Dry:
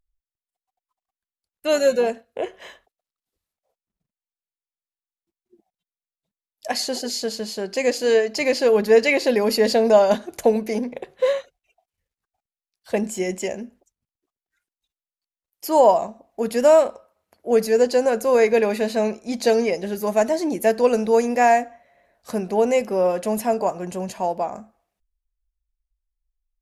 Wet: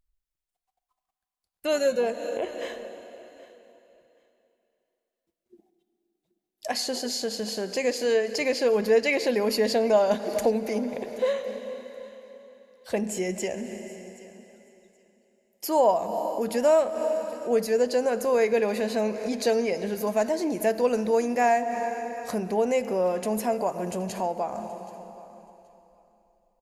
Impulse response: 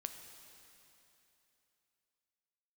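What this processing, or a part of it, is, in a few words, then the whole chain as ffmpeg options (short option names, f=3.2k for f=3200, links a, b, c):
ducked reverb: -filter_complex "[0:a]asplit=3[a][b][c];[1:a]atrim=start_sample=2205[d];[b][d]afir=irnorm=-1:irlink=0[e];[c]apad=whole_len=1173706[f];[e][f]sidechaincompress=threshold=-34dB:ratio=4:attack=16:release=136,volume=9dB[g];[a][g]amix=inputs=2:normalize=0,aecho=1:1:776|1552:0.1|0.018,volume=-8dB"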